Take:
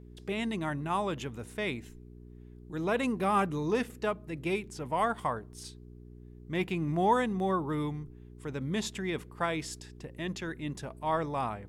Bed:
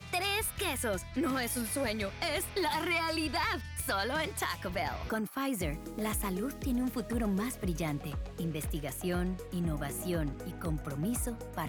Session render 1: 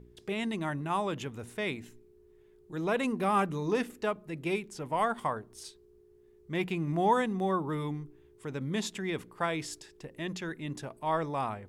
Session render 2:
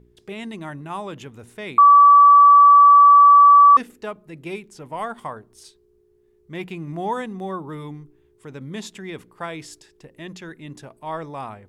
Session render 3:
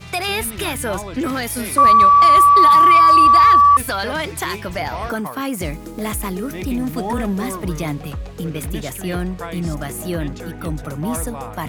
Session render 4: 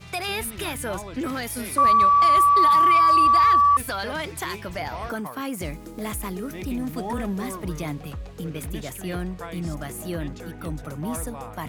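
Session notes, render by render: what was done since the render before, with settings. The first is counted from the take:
hum removal 60 Hz, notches 5
0:01.78–0:03.77: beep over 1,150 Hz −6.5 dBFS
mix in bed +9.5 dB
level −6.5 dB

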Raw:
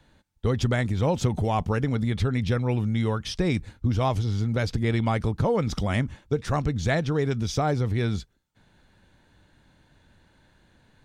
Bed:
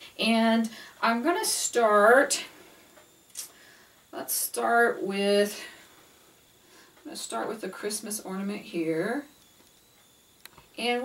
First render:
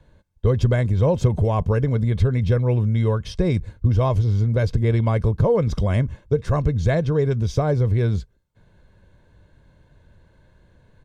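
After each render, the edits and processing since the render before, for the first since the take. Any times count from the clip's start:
tilt shelving filter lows +5.5 dB
comb filter 1.9 ms, depth 48%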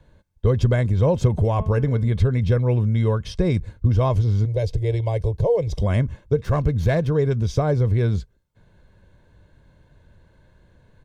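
0:01.48–0:02.10: hum removal 216.8 Hz, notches 16
0:04.45–0:05.82: phaser with its sweep stopped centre 550 Hz, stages 4
0:06.44–0:07.11: windowed peak hold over 3 samples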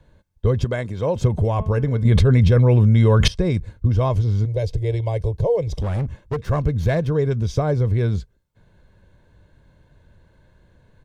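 0:00.64–0:01.16: high-pass filter 310 Hz 6 dB per octave
0:02.05–0:03.28: envelope flattener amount 100%
0:05.70–0:06.40: gain into a clipping stage and back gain 19.5 dB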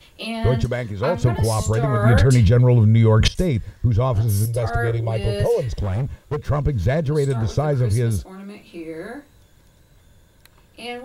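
mix in bed −4 dB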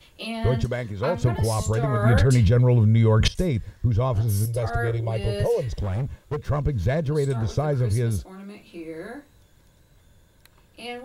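level −3.5 dB

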